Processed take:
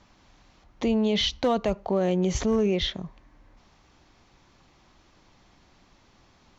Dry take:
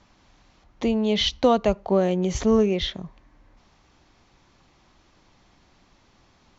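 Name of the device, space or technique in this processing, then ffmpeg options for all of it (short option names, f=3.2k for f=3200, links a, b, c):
clipper into limiter: -af "asoftclip=type=hard:threshold=-11.5dB,alimiter=limit=-16.5dB:level=0:latency=1:release=13"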